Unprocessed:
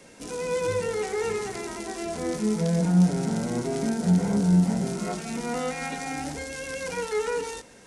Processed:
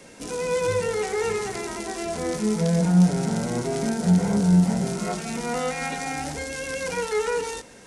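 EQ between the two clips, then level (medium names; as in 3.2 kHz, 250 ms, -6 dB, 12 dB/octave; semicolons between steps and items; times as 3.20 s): dynamic bell 280 Hz, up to -5 dB, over -39 dBFS, Q 2; +3.5 dB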